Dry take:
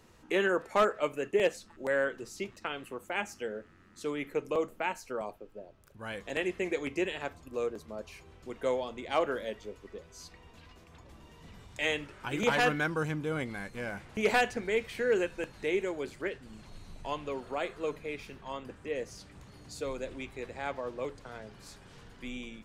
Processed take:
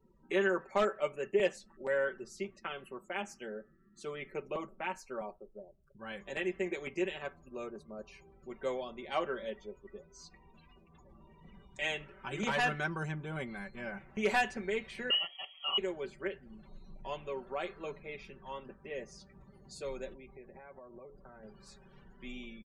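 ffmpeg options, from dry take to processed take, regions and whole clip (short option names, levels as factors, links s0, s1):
-filter_complex "[0:a]asettb=1/sr,asplit=3[s0][s1][s2];[s0]atrim=end=15.104[s3];[s1]atrim=start=15.1:end=15.78,asetpts=PTS-STARTPTS,afade=t=in:d=0.004:c=qsin,afade=t=out:st=0.676:d=0.004:c=qsin,lowpass=f=2800:t=q:w=0.5098,lowpass=f=2800:t=q:w=0.6013,lowpass=f=2800:t=q:w=0.9,lowpass=f=2800:t=q:w=2.563,afreqshift=-3300,asuperstop=centerf=1600:order=12:qfactor=4.6[s4];[s2]atrim=start=15.776[s5];[s3][s4]acrossfade=d=0.004:c1=hsin:c2=qsin[s6];[s6][s5]acrossfade=d=0.004:c1=qsin:c2=hsin,asettb=1/sr,asplit=3[s7][s8][s9];[s7]atrim=end=20.134[s10];[s8]atrim=start=20.13:end=21.43,asetpts=PTS-STARTPTS,afade=t=in:d=0.004:c=qsin,afade=t=out:st=1.296:d=0.004:c=qsin,highshelf=f=2500:g=-11,acompressor=threshold=0.00708:ratio=6:attack=3.2:release=140:knee=1:detection=peak[s11];[s9]atrim=start=21.426[s12];[s10][s11]acrossfade=d=0.004:c1=hsin:c2=qsin[s13];[s13][s12]acrossfade=d=0.004:c1=qsin:c2=hsin,afftdn=nr=26:nf=-56,aecho=1:1:5.2:0.8,volume=0.501"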